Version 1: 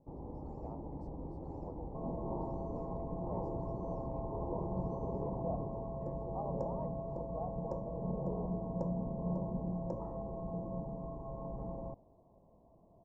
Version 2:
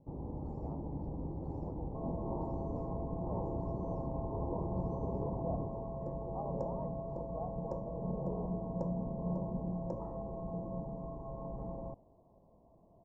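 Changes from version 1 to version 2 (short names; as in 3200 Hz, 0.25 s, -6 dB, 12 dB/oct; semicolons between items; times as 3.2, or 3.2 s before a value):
speech: add air absorption 250 m; first sound: add bell 120 Hz +6 dB 2.6 oct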